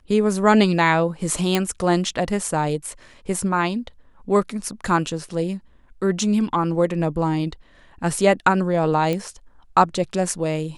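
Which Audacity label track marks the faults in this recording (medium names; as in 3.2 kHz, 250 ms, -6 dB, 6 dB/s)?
1.550000	1.550000	pop -5 dBFS
9.130000	9.130000	pop -12 dBFS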